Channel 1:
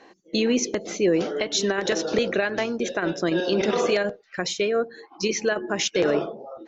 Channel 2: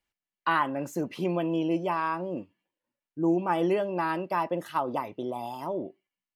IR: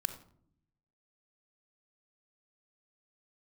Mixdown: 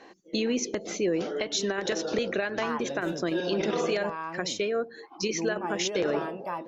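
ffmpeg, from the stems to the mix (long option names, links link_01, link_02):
-filter_complex "[0:a]volume=0dB[link_01];[1:a]bass=frequency=250:gain=1,treble=frequency=4000:gain=-5,adelay=2150,volume=-5dB,asplit=2[link_02][link_03];[link_03]volume=-15dB[link_04];[2:a]atrim=start_sample=2205[link_05];[link_04][link_05]afir=irnorm=-1:irlink=0[link_06];[link_01][link_02][link_06]amix=inputs=3:normalize=0,acompressor=threshold=-34dB:ratio=1.5"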